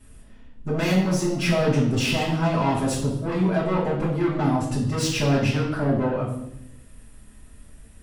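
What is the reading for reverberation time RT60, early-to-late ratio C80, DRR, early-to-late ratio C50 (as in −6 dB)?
0.80 s, 8.0 dB, −9.0 dB, 4.5 dB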